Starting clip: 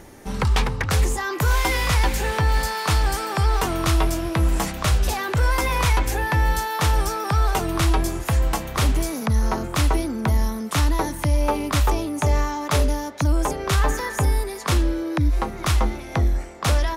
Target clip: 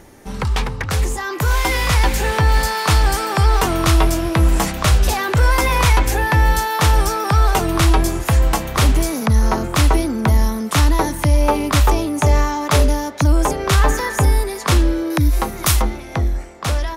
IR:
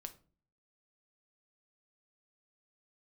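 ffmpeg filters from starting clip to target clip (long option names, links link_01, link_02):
-filter_complex "[0:a]dynaudnorm=framelen=380:gausssize=9:maxgain=6dB,asettb=1/sr,asplit=3[link_01][link_02][link_03];[link_01]atrim=end=15.104[link_04];[link_02]atrim=start=15.1:end=15.82,asetpts=PTS-STARTPTS,afade=type=in:duration=0.004:curve=qsin,afade=type=out:start_time=0.716:duration=0.004:curve=qsin,aemphasis=mode=production:type=50fm[link_05];[link_03]atrim=start=15.816[link_06];[link_04][link_05]acrossfade=duration=0.004:curve1=hsin:curve2=qsin[link_07];[link_07][link_06]acrossfade=duration=0.004:curve1=qsin:curve2=hsin"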